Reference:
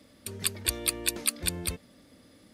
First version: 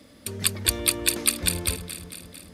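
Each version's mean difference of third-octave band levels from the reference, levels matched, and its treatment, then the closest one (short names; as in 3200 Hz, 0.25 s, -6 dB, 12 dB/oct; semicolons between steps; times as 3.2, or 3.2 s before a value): 4.0 dB: echo with dull and thin repeats by turns 0.112 s, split 1100 Hz, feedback 79%, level -9.5 dB; gain +5.5 dB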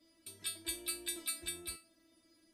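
7.5 dB: resonator 330 Hz, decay 0.27 s, harmonics all, mix 100%; gain +4 dB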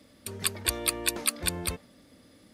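1.0 dB: dynamic EQ 940 Hz, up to +7 dB, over -52 dBFS, Q 0.79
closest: third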